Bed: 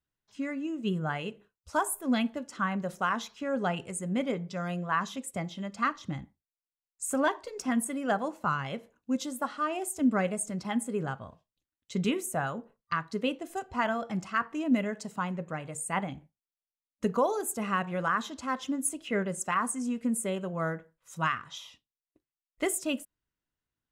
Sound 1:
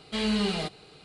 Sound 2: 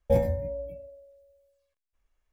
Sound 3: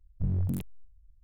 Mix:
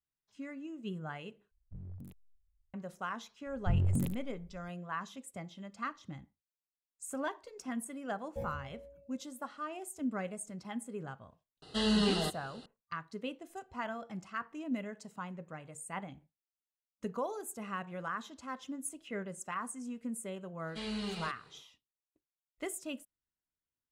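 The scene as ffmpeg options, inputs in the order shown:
-filter_complex "[3:a]asplit=2[a][b];[1:a]asplit=2[c][d];[0:a]volume=-10dB[e];[b]aecho=1:1:73:0.316[f];[c]asuperstop=centerf=2300:order=12:qfactor=4.3[g];[e]asplit=2[h][i];[h]atrim=end=1.514[j];[a]atrim=end=1.23,asetpts=PTS-STARTPTS,volume=-18dB[k];[i]atrim=start=2.736[l];[f]atrim=end=1.23,asetpts=PTS-STARTPTS,volume=-0.5dB,afade=t=in:d=0.004:c=hsin,afade=t=out:st=1.226:d=0.004:c=hsin,adelay=3460[m];[2:a]atrim=end=2.32,asetpts=PTS-STARTPTS,volume=-18dB,afade=t=in:d=0.004:c=hsin,afade=t=out:st=2.316:d=0.004:c=hsin,adelay=364266S[n];[g]atrim=end=1.04,asetpts=PTS-STARTPTS,volume=-2dB,afade=t=in:d=0.004:c=hsin,afade=t=out:st=1.036:d=0.004:c=hsin,adelay=512442S[o];[d]atrim=end=1.04,asetpts=PTS-STARTPTS,volume=-11.5dB,afade=t=in:d=0.1,afade=t=out:st=0.94:d=0.1,adelay=20630[p];[j][k]acrossfade=d=0.004:c1=hsin:c2=hsin[q];[q][l]acrossfade=d=0.004:c1=hsin:c2=hsin[r];[r][m][n][o][p]amix=inputs=5:normalize=0"

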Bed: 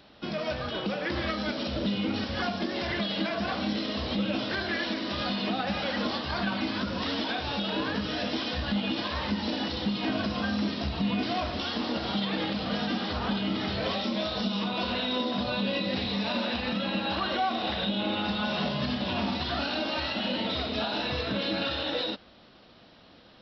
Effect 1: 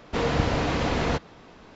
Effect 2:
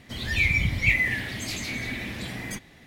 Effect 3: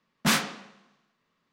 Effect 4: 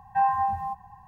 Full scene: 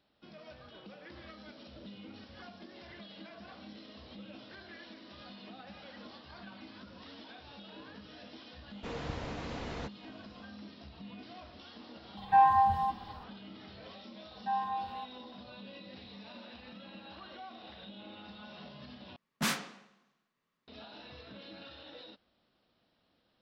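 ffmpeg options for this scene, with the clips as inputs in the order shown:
-filter_complex "[4:a]asplit=2[a][b];[0:a]volume=-20dB[c];[a]acontrast=84[d];[b]bass=f=250:g=-9,treble=f=4k:g=-2[e];[c]asplit=2[f][g];[f]atrim=end=19.164[h];[3:a]atrim=end=1.52,asetpts=PTS-STARTPTS,volume=-8.5dB[i];[g]atrim=start=20.676[j];[1:a]atrim=end=1.75,asetpts=PTS-STARTPTS,volume=-15.5dB,afade=t=in:d=0.004:c=hsin,afade=t=out:st=1.746:d=0.004:c=hsin,adelay=8700[k];[d]atrim=end=1.07,asetpts=PTS-STARTPTS,volume=-6.5dB,afade=t=in:d=0.004:c=hsin,afade=t=out:st=1.066:d=0.004:c=hsin,adelay=12170[l];[e]atrim=end=1.07,asetpts=PTS-STARTPTS,volume=-10.5dB,afade=t=in:d=0.004:c=hsin,afade=t=out:st=1.066:d=0.004:c=hsin,adelay=14310[m];[h][i]acrossfade=d=0.004:c1=hsin:c2=hsin[n];[n][j]acrossfade=d=0.004:c1=hsin:c2=hsin[o];[o][k][l][m]amix=inputs=4:normalize=0"

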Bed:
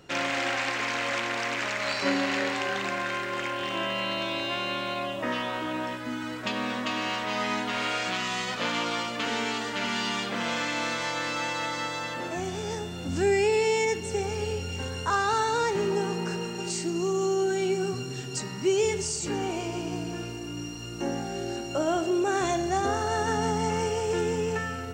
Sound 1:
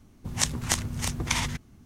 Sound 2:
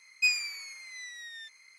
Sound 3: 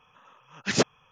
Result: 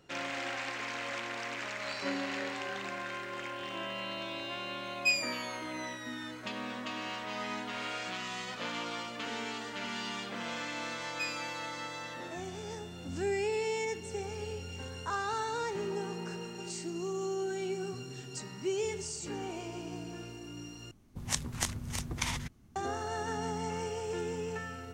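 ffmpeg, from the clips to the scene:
-filter_complex "[2:a]asplit=2[a][b];[0:a]volume=-9dB,asplit=2[c][d];[c]atrim=end=20.914[e];[1:a]atrim=end=1.85,asetpts=PTS-STARTPTS,volume=-7dB[f];[d]atrim=start=22.756[g];[a]atrim=end=1.78,asetpts=PTS-STARTPTS,volume=-2.5dB,afade=t=in:d=0.004:c=hsin,afade=t=out:st=1.776:d=0.004:c=hsin,adelay=4830[h];[b]atrim=end=1.78,asetpts=PTS-STARTPTS,volume=-12dB,afade=t=in:d=0.004:c=hsin,afade=t=out:st=1.776:d=0.004:c=hsin,adelay=10970[i];[e][f]acrossfade=d=0.004:c1=hsin:c2=hsin[j];[j][g]acrossfade=d=0.004:c1=hsin:c2=hsin[k];[k][h][i]amix=inputs=3:normalize=0"

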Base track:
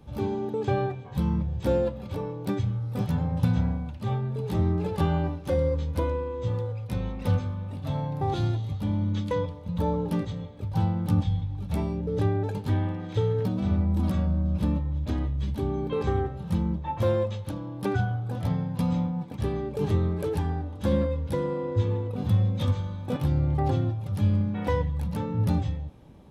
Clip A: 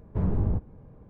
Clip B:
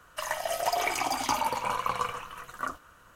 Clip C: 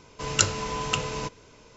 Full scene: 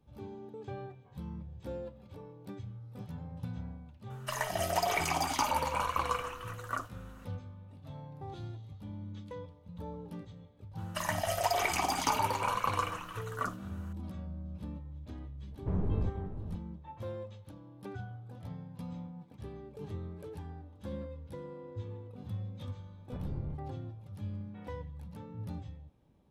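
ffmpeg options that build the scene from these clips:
-filter_complex "[2:a]asplit=2[a][b];[1:a]asplit=2[c][d];[0:a]volume=-16.5dB[e];[c]asplit=2[f][g];[g]adelay=478.1,volume=-10dB,highshelf=f=4k:g=-10.8[h];[f][h]amix=inputs=2:normalize=0[i];[a]atrim=end=3.15,asetpts=PTS-STARTPTS,volume=-2.5dB,afade=t=in:d=0.004:c=hsin,afade=t=out:st=3.146:d=0.004:c=hsin,adelay=4100[j];[b]atrim=end=3.15,asetpts=PTS-STARTPTS,volume=-2dB,afade=t=in:d=0.004:c=hsin,afade=t=out:st=3.146:d=0.004:c=hsin,adelay=10780[k];[i]atrim=end=1.09,asetpts=PTS-STARTPTS,volume=-6dB,afade=t=in:d=0.004:c=hsin,afade=t=out:st=1.086:d=0.004:c=hsin,adelay=15510[l];[d]atrim=end=1.09,asetpts=PTS-STARTPTS,volume=-15dB,afade=t=in:d=0.004:c=hsin,afade=t=out:st=1.086:d=0.004:c=hsin,adelay=22970[m];[e][j][k][l][m]amix=inputs=5:normalize=0"

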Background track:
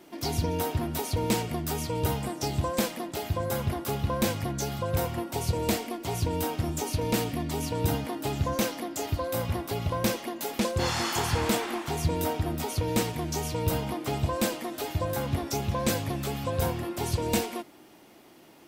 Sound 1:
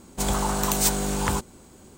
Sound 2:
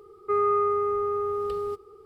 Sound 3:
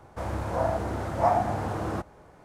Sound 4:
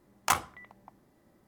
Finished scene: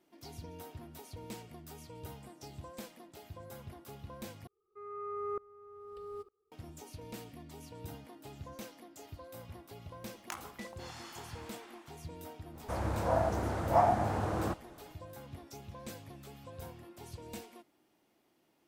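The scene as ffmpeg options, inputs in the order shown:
-filter_complex "[0:a]volume=-19dB[a];[2:a]aeval=exprs='val(0)*pow(10,-25*if(lt(mod(-1.1*n/s,1),2*abs(-1.1)/1000),1-mod(-1.1*n/s,1)/(2*abs(-1.1)/1000),(mod(-1.1*n/s,1)-2*abs(-1.1)/1000)/(1-2*abs(-1.1)/1000))/20)':c=same[b];[4:a]acompressor=threshold=-38dB:ratio=6:attack=3.2:release=140:knee=1:detection=peak[c];[a]asplit=2[d][e];[d]atrim=end=4.474[f];[b]atrim=end=2.05,asetpts=PTS-STARTPTS,volume=-9dB[g];[e]atrim=start=6.516[h];[c]atrim=end=1.47,asetpts=PTS-STARTPTS,volume=-1dB,afade=t=in:d=0.004:c=hsin,afade=t=out:st=1.466:d=0.004:c=hsin,adelay=441882S[i];[3:a]atrim=end=2.44,asetpts=PTS-STARTPTS,volume=-3dB,afade=t=in:d=0.05,afade=t=out:st=2.39:d=0.05,adelay=552132S[j];[f][g]acrossfade=d=0.004:c1=hsin:c2=hsin[k];[k][h]acrossfade=d=0.004:c1=hsin:c2=hsin[l];[l][i][j]amix=inputs=3:normalize=0"

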